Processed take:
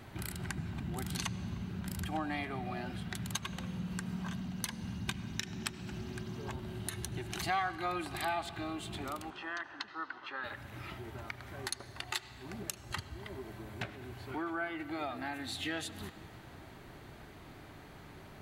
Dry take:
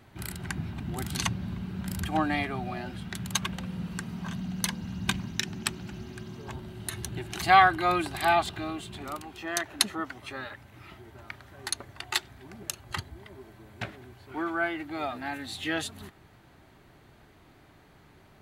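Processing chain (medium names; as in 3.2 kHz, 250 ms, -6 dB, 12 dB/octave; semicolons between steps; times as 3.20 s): compression 2.5:1, threshold -45 dBFS, peak gain reduction 20.5 dB; 9.30–10.44 s: cabinet simulation 430–4100 Hz, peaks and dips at 430 Hz -4 dB, 650 Hz -9 dB, 970 Hz +5 dB, 1.5 kHz +5 dB, 2.3 kHz -7 dB, 3.8 kHz -6 dB; reverberation RT60 2.0 s, pre-delay 70 ms, DRR 13.5 dB; trim +4.5 dB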